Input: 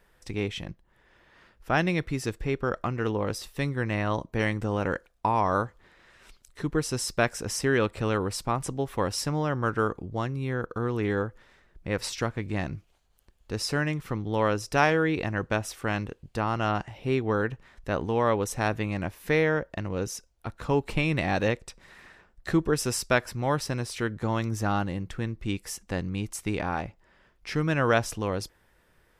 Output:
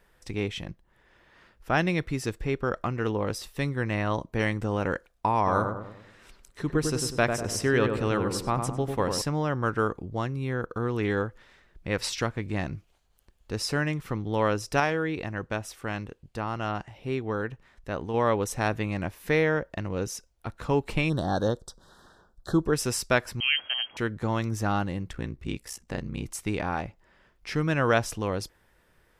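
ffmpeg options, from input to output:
ffmpeg -i in.wav -filter_complex "[0:a]asettb=1/sr,asplit=3[link_01][link_02][link_03];[link_01]atrim=end=5.374[link_04];[link_02]atrim=start=5.37:end=9.22,asetpts=PTS-STARTPTS,afade=type=in:duration=0.004:curve=qsin,afade=type=out:start_time=3.846:duration=0.004:curve=qsin,asplit=2[link_05][link_06];[link_06]adelay=98,lowpass=frequency=1300:poles=1,volume=-4.5dB,asplit=2[link_07][link_08];[link_08]adelay=98,lowpass=frequency=1300:poles=1,volume=0.51,asplit=2[link_09][link_10];[link_10]adelay=98,lowpass=frequency=1300:poles=1,volume=0.51,asplit=2[link_11][link_12];[link_12]adelay=98,lowpass=frequency=1300:poles=1,volume=0.51,asplit=2[link_13][link_14];[link_14]adelay=98,lowpass=frequency=1300:poles=1,volume=0.51,asplit=2[link_15][link_16];[link_16]adelay=98,lowpass=frequency=1300:poles=1,volume=0.51,asplit=2[link_17][link_18];[link_18]adelay=98,lowpass=frequency=1300:poles=1,volume=0.51[link_19];[link_05][link_07][link_09][link_11][link_13][link_15][link_17][link_19]amix=inputs=8:normalize=0,atrim=end_sample=169785[link_20];[link_03]atrim=start=9.216[link_21];[link_04][link_20]acrossfade=duration=0.004:curve1=hsin:curve2=qsin[link_22];[link_22][link_21]acrossfade=duration=0.004:curve1=qsin:curve2=hsin,asettb=1/sr,asplit=3[link_23][link_24][link_25];[link_23]atrim=end=10.964[link_26];[link_24]atrim=start=10.96:end=12.27,asetpts=PTS-STARTPTS,afade=type=in:duration=0.004:curve=qsin,afade=type=out:start_time=1.306:duration=0.004:curve=qsin,equalizer=frequency=3400:width_type=o:width=2:gain=3.5[link_27];[link_25]atrim=start=12.266[link_28];[link_26][link_27]acrossfade=duration=0.004:curve1=hsin:curve2=qsin[link_29];[link_29][link_28]acrossfade=duration=0.004:curve1=qsin:curve2=hsin,asplit=3[link_30][link_31][link_32];[link_30]afade=type=out:start_time=21.08:duration=0.02[link_33];[link_31]asuperstop=centerf=2300:order=8:qfactor=1.3,afade=type=in:start_time=21.08:duration=0.02,afade=type=out:start_time=22.65:duration=0.02[link_34];[link_32]afade=type=in:start_time=22.65:duration=0.02[link_35];[link_33][link_34][link_35]amix=inputs=3:normalize=0,asettb=1/sr,asplit=3[link_36][link_37][link_38];[link_36]atrim=end=23.404[link_39];[link_37]atrim=start=23.4:end=23.97,asetpts=PTS-STARTPTS,afade=type=in:duration=0.004:curve=qsin,afade=type=out:start_time=0.566:duration=0.004:curve=qsin,lowpass=frequency=2800:width_type=q:width=0.5098,lowpass=frequency=2800:width_type=q:width=0.6013,lowpass=frequency=2800:width_type=q:width=0.9,lowpass=frequency=2800:width_type=q:width=2.563,afreqshift=-3300[link_40];[link_38]atrim=start=23.966[link_41];[link_39][link_40]acrossfade=duration=0.004:curve1=hsin:curve2=qsin[link_42];[link_42][link_41]acrossfade=duration=0.004:curve1=qsin:curve2=hsin,asettb=1/sr,asplit=3[link_43][link_44][link_45];[link_43]atrim=end=25.124[link_46];[link_44]atrim=start=25.12:end=26.26,asetpts=PTS-STARTPTS,afade=type=in:duration=0.004:curve=qsin,afade=type=out:start_time=1.136:duration=0.004:curve=qsin,aeval=exprs='val(0)*sin(2*PI*31*n/s)':channel_layout=same[link_47];[link_45]atrim=start=26.256[link_48];[link_46][link_47]acrossfade=duration=0.004:curve1=hsin:curve2=qsin[link_49];[link_49][link_48]acrossfade=duration=0.004:curve1=qsin:curve2=hsin,asplit=3[link_50][link_51][link_52];[link_50]atrim=end=14.802[link_53];[link_51]atrim=start=14.798:end=18.142,asetpts=PTS-STARTPTS,volume=-4dB[link_54];[link_52]atrim=start=18.138[link_55];[link_53][link_54]acrossfade=duration=0.004:curve1=hsin:curve2=hsin[link_56];[link_56][link_55]acrossfade=duration=0.004:curve1=hsin:curve2=hsin" out.wav

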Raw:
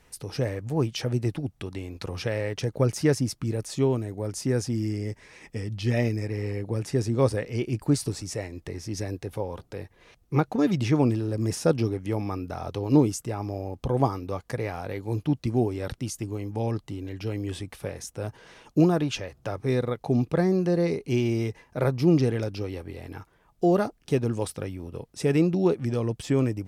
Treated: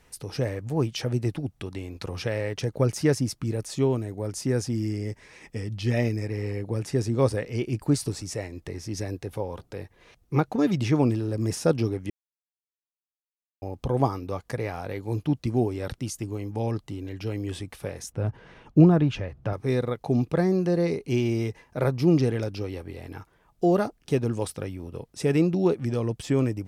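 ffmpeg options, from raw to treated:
ffmpeg -i in.wav -filter_complex "[0:a]asettb=1/sr,asplit=3[link_01][link_02][link_03];[link_01]atrim=end=18.124[link_04];[link_02]atrim=start=18.12:end=19.53,asetpts=PTS-STARTPTS,afade=type=in:duration=0.004:curve=qsin,afade=type=out:start_time=1.406:duration=0.004:curve=qsin,bass=frequency=250:gain=8,treble=frequency=4000:gain=-14[link_05];[link_03]atrim=start=19.526[link_06];[link_04][link_05]acrossfade=duration=0.004:curve1=hsin:curve2=qsin[link_07];[link_07][link_06]acrossfade=duration=0.004:curve1=qsin:curve2=hsin,asplit=3[link_08][link_09][link_10];[link_08]atrim=end=12.1,asetpts=PTS-STARTPTS,afade=type=out:start_time=12.096:duration=0.004:curve=hsin[link_11];[link_09]atrim=start=12.1:end=13.62,asetpts=PTS-STARTPTS,volume=0[link_12];[link_10]atrim=start=13.62,asetpts=PTS-STARTPTS,afade=type=in:duration=0.004:curve=hsin[link_13];[link_11][link_12][link_13]concat=n=3:v=0:a=1" out.wav

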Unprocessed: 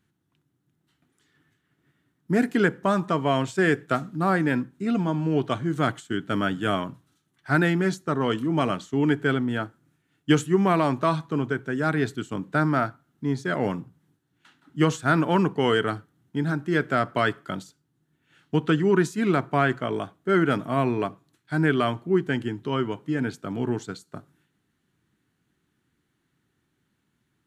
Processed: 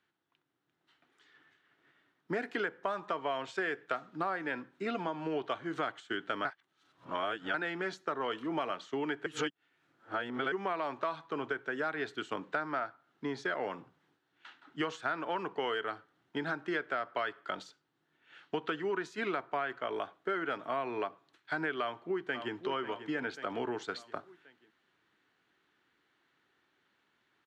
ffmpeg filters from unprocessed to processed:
ffmpeg -i in.wav -filter_complex "[0:a]asplit=2[link_01][link_02];[link_02]afade=type=in:start_time=21.8:duration=0.01,afade=type=out:start_time=22.54:duration=0.01,aecho=0:1:540|1080|1620|2160:0.199526|0.0897868|0.0404041|0.0181818[link_03];[link_01][link_03]amix=inputs=2:normalize=0,asplit=5[link_04][link_05][link_06][link_07][link_08];[link_04]atrim=end=6.452[link_09];[link_05]atrim=start=6.448:end=7.542,asetpts=PTS-STARTPTS,areverse[link_10];[link_06]atrim=start=7.538:end=9.262[link_11];[link_07]atrim=start=9.258:end=10.522,asetpts=PTS-STARTPTS,areverse[link_12];[link_08]atrim=start=10.518[link_13];[link_09][link_10]acrossfade=duration=0.004:curve1=hsin:curve2=hsin[link_14];[link_14][link_11]acrossfade=duration=0.004:curve1=hsin:curve2=hsin[link_15];[link_15][link_12]acrossfade=duration=0.004:curve1=hsin:curve2=hsin[link_16];[link_16][link_13]acrossfade=duration=0.004:curve1=hsin:curve2=hsin,dynaudnorm=framelen=490:gausssize=3:maxgain=5dB,acrossover=split=400 5000:gain=0.0891 1 0.0794[link_17][link_18][link_19];[link_17][link_18][link_19]amix=inputs=3:normalize=0,acompressor=threshold=-32dB:ratio=6" out.wav

